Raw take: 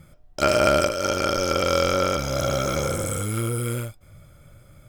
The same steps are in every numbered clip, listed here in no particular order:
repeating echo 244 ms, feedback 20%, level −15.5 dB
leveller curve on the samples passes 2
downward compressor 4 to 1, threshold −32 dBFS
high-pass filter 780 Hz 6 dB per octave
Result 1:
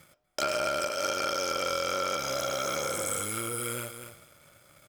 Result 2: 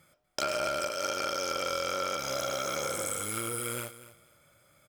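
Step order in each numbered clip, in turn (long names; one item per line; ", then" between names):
repeating echo, then downward compressor, then high-pass filter, then leveller curve on the samples
high-pass filter, then leveller curve on the samples, then downward compressor, then repeating echo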